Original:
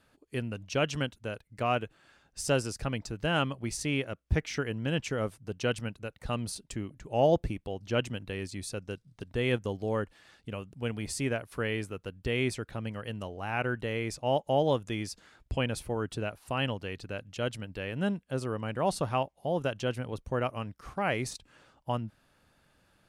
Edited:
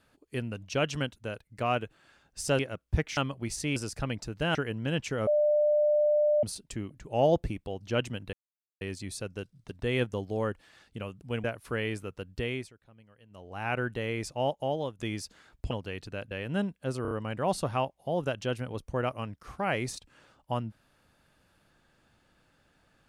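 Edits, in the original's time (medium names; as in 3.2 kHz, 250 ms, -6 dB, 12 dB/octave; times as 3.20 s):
2.59–3.38 s: swap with 3.97–4.55 s
5.27–6.43 s: bleep 597 Hz -21 dBFS
8.33 s: insert silence 0.48 s
10.96–11.31 s: delete
12.23–13.53 s: dip -21 dB, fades 0.37 s
14.18–14.86 s: fade out, to -11 dB
15.58–16.68 s: delete
17.28–17.78 s: delete
18.49 s: stutter 0.03 s, 4 plays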